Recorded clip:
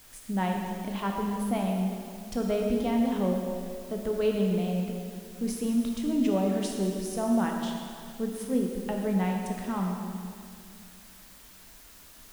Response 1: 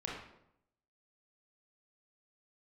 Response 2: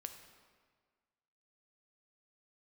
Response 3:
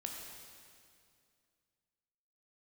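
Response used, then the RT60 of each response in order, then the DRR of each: 3; 0.80 s, 1.6 s, 2.3 s; -4.0 dB, 6.0 dB, 0.5 dB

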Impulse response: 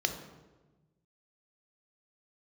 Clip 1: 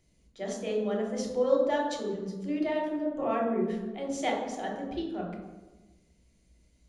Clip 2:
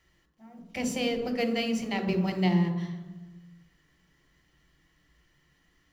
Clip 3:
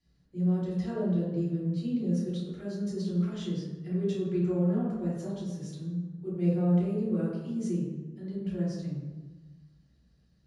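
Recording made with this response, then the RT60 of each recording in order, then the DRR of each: 2; 1.2 s, 1.2 s, 1.2 s; -1.5 dB, 5.0 dB, -8.5 dB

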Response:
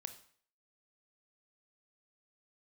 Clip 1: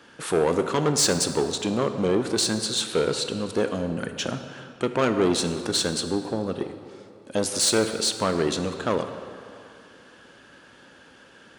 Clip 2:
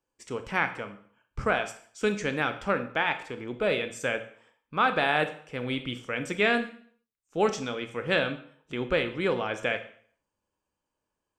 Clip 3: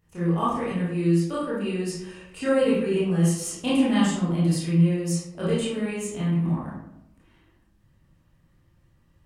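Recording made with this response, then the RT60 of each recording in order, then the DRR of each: 2; 2.4 s, 0.55 s, 0.80 s; 7.5 dB, 8.5 dB, -9.5 dB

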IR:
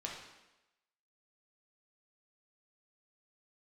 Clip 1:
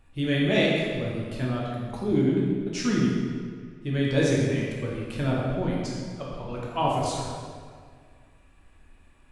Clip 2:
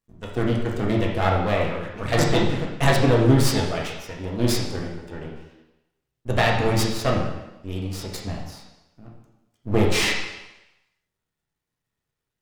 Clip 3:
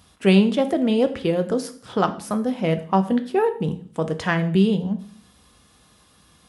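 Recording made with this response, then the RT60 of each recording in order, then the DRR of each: 2; 1.9 s, 1.0 s, 0.50 s; -5.0 dB, -2.5 dB, 7.5 dB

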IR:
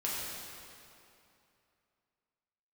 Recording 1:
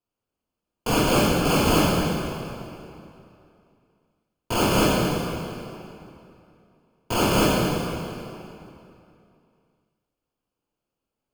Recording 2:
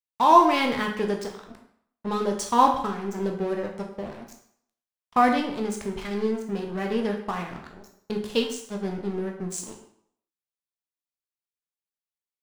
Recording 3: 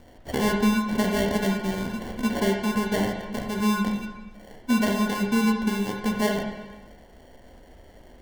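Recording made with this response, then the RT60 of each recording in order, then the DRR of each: 1; 2.7 s, 0.65 s, 1.2 s; -7.0 dB, 2.0 dB, 0.0 dB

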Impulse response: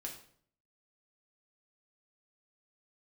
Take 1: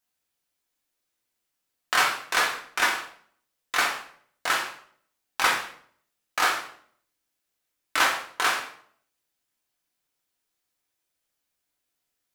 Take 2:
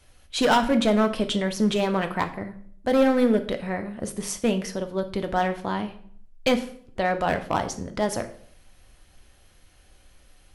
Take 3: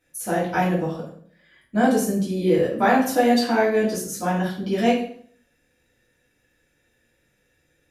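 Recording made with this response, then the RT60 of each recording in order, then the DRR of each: 1; 0.60 s, 0.60 s, 0.60 s; -0.5 dB, 7.0 dB, -9.0 dB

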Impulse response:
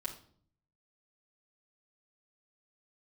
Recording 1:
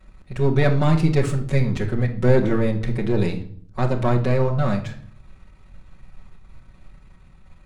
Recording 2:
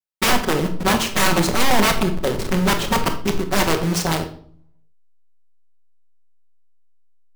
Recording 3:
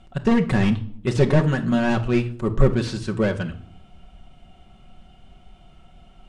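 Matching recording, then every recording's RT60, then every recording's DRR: 1; 0.55 s, 0.55 s, 0.55 s; -4.5 dB, -11.0 dB, 3.0 dB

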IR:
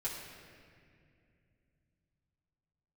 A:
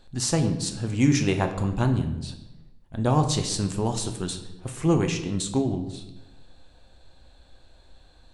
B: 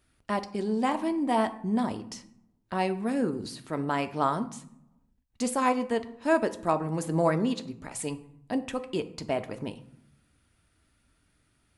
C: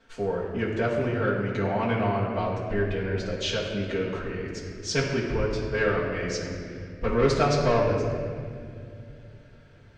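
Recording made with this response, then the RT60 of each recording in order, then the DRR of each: C; 0.95 s, 0.70 s, 2.4 s; 5.5 dB, 8.5 dB, -7.5 dB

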